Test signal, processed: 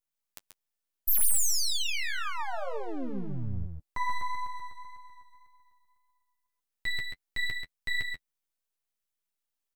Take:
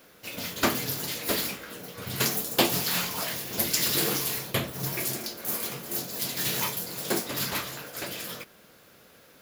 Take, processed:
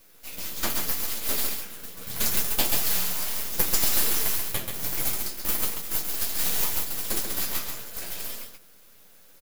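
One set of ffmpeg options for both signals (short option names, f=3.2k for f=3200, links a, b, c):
-af "crystalizer=i=2:c=0,aeval=exprs='max(val(0),0)':c=same,flanger=delay=8.8:depth=2.7:regen=-19:speed=1.8:shape=sinusoidal,aecho=1:1:134:0.531"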